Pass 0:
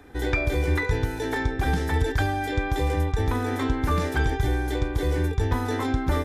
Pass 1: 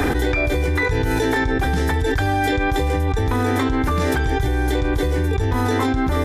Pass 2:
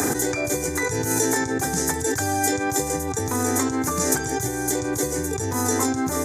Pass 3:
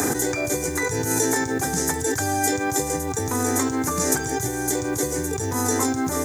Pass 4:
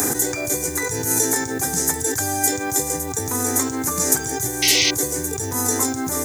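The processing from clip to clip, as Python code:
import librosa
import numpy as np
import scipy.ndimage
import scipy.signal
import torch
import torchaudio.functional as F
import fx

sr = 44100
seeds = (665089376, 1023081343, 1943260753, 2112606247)

y1 = fx.env_flatten(x, sr, amount_pct=100)
y2 = scipy.signal.sosfilt(scipy.signal.butter(4, 110.0, 'highpass', fs=sr, output='sos'), y1)
y2 = fx.high_shelf_res(y2, sr, hz=4700.0, db=13.0, q=3.0)
y2 = fx.notch(y2, sr, hz=5400.0, q=22.0)
y2 = y2 * 10.0 ** (-3.0 / 20.0)
y3 = fx.quant_dither(y2, sr, seeds[0], bits=8, dither='none')
y4 = fx.high_shelf(y3, sr, hz=6600.0, db=11.0)
y4 = fx.spec_paint(y4, sr, seeds[1], shape='noise', start_s=4.62, length_s=0.29, low_hz=1900.0, high_hz=6500.0, level_db=-16.0)
y4 = y4 * 10.0 ** (-1.5 / 20.0)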